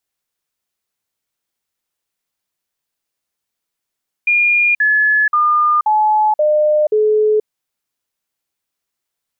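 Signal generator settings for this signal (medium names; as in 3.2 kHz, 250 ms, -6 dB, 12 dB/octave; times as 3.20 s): stepped sine 2.42 kHz down, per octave 2, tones 6, 0.48 s, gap 0.05 s -10 dBFS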